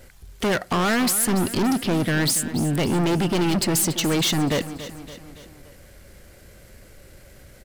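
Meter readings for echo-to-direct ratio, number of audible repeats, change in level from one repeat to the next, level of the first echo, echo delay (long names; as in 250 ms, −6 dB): −12.0 dB, 4, −5.5 dB, −13.5 dB, 284 ms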